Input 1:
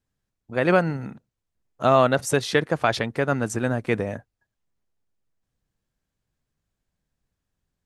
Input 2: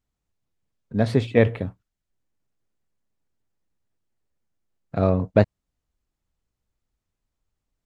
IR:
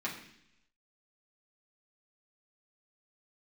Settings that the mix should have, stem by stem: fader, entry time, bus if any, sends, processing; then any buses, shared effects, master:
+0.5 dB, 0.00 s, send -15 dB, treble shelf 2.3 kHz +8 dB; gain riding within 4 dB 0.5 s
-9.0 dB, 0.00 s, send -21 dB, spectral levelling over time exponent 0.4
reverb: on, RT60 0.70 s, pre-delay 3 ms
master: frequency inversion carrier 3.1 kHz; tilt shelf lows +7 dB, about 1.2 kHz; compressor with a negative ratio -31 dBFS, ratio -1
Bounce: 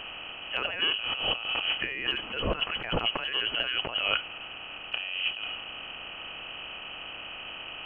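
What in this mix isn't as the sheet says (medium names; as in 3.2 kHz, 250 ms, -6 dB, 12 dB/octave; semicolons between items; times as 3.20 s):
stem 1: send off; stem 2 -9.0 dB -> -2.5 dB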